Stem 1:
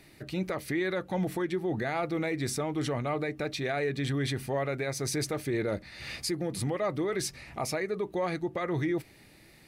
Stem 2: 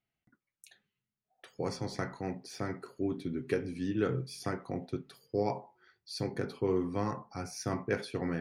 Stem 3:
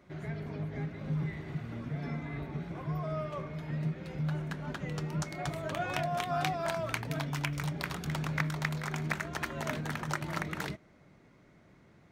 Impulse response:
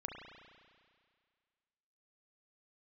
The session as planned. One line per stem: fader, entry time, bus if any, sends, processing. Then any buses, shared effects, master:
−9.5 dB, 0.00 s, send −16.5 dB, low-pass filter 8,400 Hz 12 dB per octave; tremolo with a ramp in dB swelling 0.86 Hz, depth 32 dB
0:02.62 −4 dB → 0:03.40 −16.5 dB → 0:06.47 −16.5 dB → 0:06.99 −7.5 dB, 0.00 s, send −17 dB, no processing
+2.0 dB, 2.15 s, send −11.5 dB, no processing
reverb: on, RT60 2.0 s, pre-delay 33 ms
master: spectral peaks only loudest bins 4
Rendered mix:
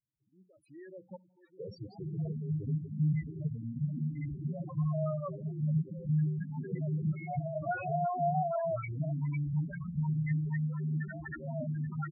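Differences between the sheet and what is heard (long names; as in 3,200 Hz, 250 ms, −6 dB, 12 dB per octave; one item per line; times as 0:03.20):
stem 2: send −17 dB → −10.5 dB
stem 3: entry 2.15 s → 1.90 s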